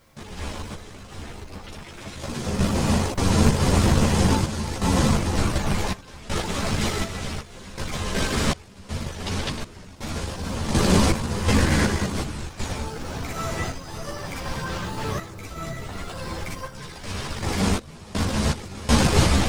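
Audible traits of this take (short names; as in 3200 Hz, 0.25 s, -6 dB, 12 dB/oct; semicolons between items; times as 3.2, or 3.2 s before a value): a quantiser's noise floor 10-bit, dither triangular; random-step tremolo 2.7 Hz, depth 95%; a shimmering, thickened sound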